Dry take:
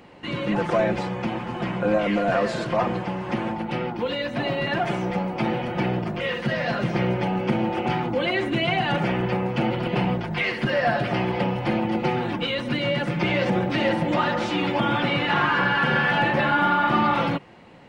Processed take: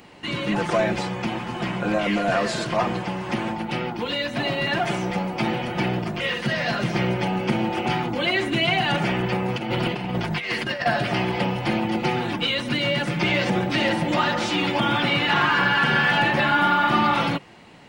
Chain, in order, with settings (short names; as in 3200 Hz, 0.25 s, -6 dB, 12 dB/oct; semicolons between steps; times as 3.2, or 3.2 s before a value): high shelf 3400 Hz +11 dB; notch 520 Hz, Q 12; 9.48–10.86 negative-ratio compressor -25 dBFS, ratio -0.5